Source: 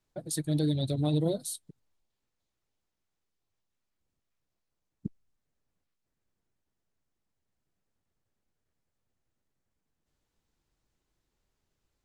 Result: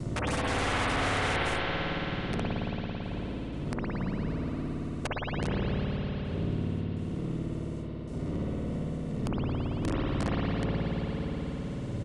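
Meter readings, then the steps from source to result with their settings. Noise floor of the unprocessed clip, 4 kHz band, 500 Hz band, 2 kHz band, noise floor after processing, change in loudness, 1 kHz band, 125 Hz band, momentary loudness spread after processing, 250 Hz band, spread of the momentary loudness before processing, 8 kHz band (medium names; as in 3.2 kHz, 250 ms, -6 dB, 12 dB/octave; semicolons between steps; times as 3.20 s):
-84 dBFS, +8.5 dB, +6.0 dB, no reading, -37 dBFS, -2.0 dB, +18.5 dB, +5.5 dB, 8 LU, +6.0 dB, 16 LU, -3.0 dB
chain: wind noise 110 Hz -47 dBFS; gate with hold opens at -57 dBFS; peaking EQ 2.1 kHz -7 dB 2.1 oct; in parallel at +3 dB: compression 12:1, threshold -45 dBFS, peak gain reduction 22 dB; on the sum: full-wave rectifier; comb of notches 810 Hz; integer overflow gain 35 dB; spring tank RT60 3.1 s, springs 55 ms, chirp 70 ms, DRR -8.5 dB; resampled via 22.05 kHz; three bands compressed up and down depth 70%; trim +7 dB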